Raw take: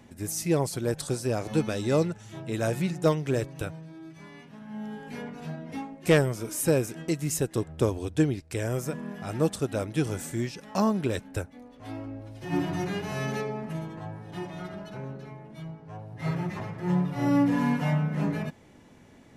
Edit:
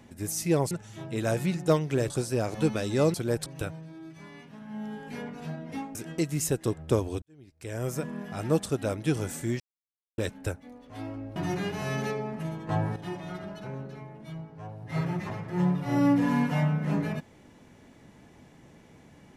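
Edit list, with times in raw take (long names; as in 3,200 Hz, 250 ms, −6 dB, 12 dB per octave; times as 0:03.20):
0:00.71–0:01.03: swap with 0:02.07–0:03.46
0:05.95–0:06.85: remove
0:08.12–0:08.82: fade in quadratic
0:10.50–0:11.08: silence
0:12.26–0:12.66: remove
0:13.99–0:14.26: clip gain +11 dB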